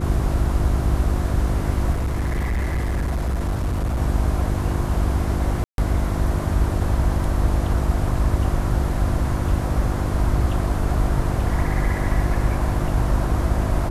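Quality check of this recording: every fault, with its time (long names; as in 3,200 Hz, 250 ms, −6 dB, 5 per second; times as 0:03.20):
mains hum 50 Hz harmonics 7 −25 dBFS
0:01.92–0:03.99: clipping −19 dBFS
0:05.64–0:05.78: drop-out 142 ms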